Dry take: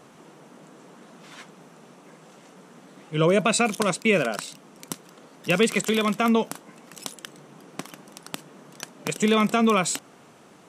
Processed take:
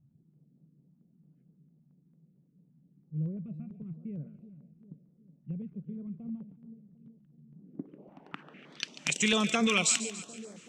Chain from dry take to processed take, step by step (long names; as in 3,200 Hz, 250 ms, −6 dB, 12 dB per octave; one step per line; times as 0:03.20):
drawn EQ curve 570 Hz 0 dB, 1,100 Hz −2 dB, 2,700 Hz +13 dB, 3,900 Hz +8 dB
low-pass filter sweep 120 Hz → 7,100 Hz, 0:07.46–0:09.00
high-shelf EQ 4,800 Hz −7.5 dB
echo with a time of its own for lows and highs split 600 Hz, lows 375 ms, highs 142 ms, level −13 dB
notch on a step sequencer 8.9 Hz 440–2,800 Hz
level −7 dB